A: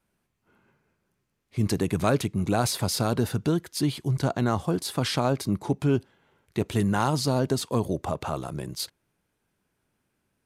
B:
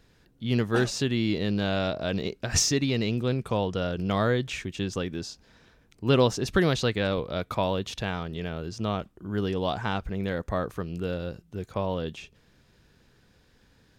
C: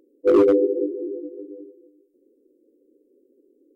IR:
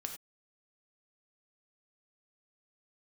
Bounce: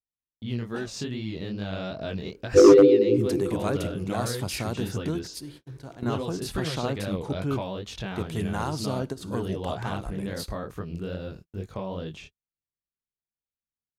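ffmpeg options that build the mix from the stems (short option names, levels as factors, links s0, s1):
-filter_complex "[0:a]adelay=1600,volume=0.422,asplit=2[s0][s1];[s1]volume=0.251[s2];[1:a]lowshelf=f=240:g=3.5,acompressor=threshold=0.0501:ratio=6,flanger=delay=19:depth=7.5:speed=2.4,volume=1.12,asplit=2[s3][s4];[2:a]adelay=2300,volume=1.19,asplit=2[s5][s6];[s6]volume=0.15[s7];[s4]apad=whole_len=531597[s8];[s0][s8]sidechaingate=range=0.141:threshold=0.00447:ratio=16:detection=peak[s9];[3:a]atrim=start_sample=2205[s10];[s2][s7]amix=inputs=2:normalize=0[s11];[s11][s10]afir=irnorm=-1:irlink=0[s12];[s9][s3][s5][s12]amix=inputs=4:normalize=0,agate=range=0.00562:threshold=0.00501:ratio=16:detection=peak"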